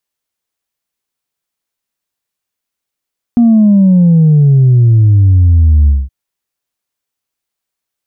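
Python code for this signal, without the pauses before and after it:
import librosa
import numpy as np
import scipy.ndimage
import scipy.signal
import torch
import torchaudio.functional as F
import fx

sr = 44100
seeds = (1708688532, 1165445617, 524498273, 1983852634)

y = fx.sub_drop(sr, level_db=-4, start_hz=240.0, length_s=2.72, drive_db=0.5, fade_s=0.21, end_hz=65.0)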